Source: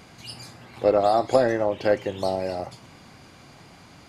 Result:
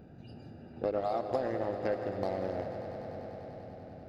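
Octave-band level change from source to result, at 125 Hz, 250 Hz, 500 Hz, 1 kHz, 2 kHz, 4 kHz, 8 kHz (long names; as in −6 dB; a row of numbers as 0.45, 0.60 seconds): −6.0 dB, −8.5 dB, −11.0 dB, −11.0 dB, −12.5 dB, −17.0 dB, can't be measured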